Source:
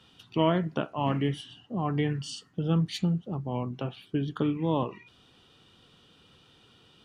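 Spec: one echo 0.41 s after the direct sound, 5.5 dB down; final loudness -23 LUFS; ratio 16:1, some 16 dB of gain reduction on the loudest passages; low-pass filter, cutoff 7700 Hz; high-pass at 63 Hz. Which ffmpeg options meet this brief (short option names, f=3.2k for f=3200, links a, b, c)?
-af "highpass=63,lowpass=7.7k,acompressor=threshold=-37dB:ratio=16,aecho=1:1:410:0.531,volume=19dB"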